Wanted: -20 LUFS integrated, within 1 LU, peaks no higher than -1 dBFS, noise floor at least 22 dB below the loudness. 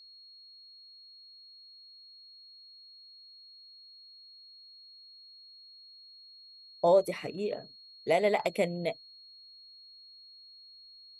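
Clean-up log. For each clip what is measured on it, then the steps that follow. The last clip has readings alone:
steady tone 4300 Hz; tone level -51 dBFS; loudness -30.0 LUFS; peak -13.0 dBFS; loudness target -20.0 LUFS
-> notch 4300 Hz, Q 30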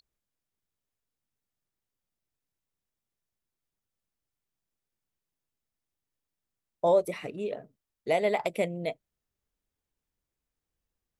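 steady tone none; loudness -29.5 LUFS; peak -13.0 dBFS; loudness target -20.0 LUFS
-> gain +9.5 dB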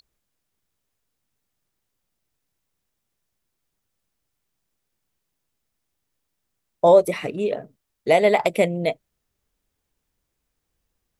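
loudness -20.0 LUFS; peak -3.5 dBFS; noise floor -79 dBFS

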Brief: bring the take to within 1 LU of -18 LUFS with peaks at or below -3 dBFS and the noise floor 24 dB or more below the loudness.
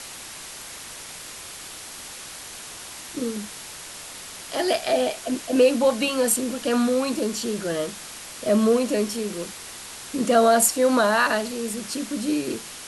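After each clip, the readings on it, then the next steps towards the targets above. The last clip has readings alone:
noise floor -39 dBFS; noise floor target -47 dBFS; loudness -22.5 LUFS; peak -6.0 dBFS; loudness target -18.0 LUFS
-> denoiser 8 dB, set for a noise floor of -39 dBFS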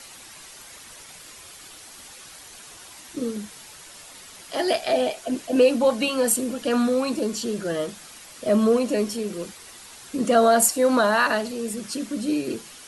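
noise floor -45 dBFS; noise floor target -47 dBFS
-> denoiser 6 dB, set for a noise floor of -45 dBFS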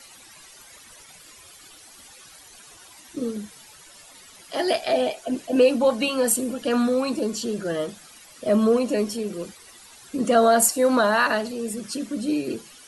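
noise floor -48 dBFS; loudness -23.0 LUFS; peak -6.0 dBFS; loudness target -18.0 LUFS
-> gain +5 dB; limiter -3 dBFS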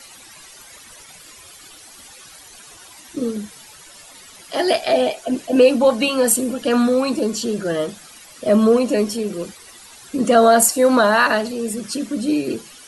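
loudness -18.0 LUFS; peak -3.0 dBFS; noise floor -43 dBFS

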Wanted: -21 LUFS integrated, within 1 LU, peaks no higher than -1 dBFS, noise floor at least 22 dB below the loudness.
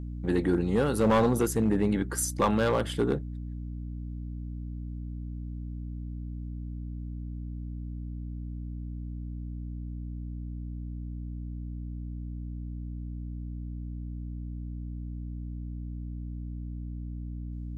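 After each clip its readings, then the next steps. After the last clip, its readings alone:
clipped 0.4%; flat tops at -17.5 dBFS; hum 60 Hz; harmonics up to 300 Hz; hum level -34 dBFS; loudness -33.0 LUFS; peak -17.5 dBFS; loudness target -21.0 LUFS
-> clip repair -17.5 dBFS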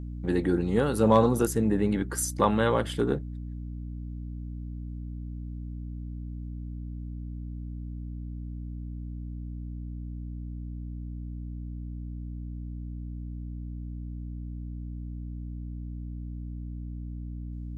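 clipped 0.0%; hum 60 Hz; harmonics up to 300 Hz; hum level -34 dBFS
-> notches 60/120/180/240/300 Hz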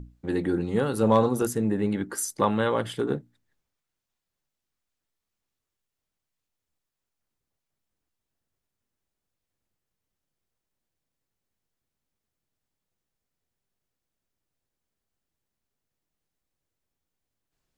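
hum none; loudness -26.0 LUFS; peak -8.5 dBFS; loudness target -21.0 LUFS
-> gain +5 dB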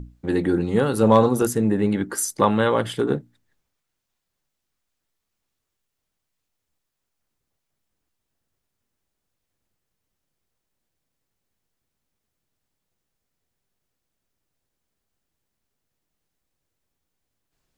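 loudness -21.0 LUFS; peak -3.5 dBFS; noise floor -80 dBFS

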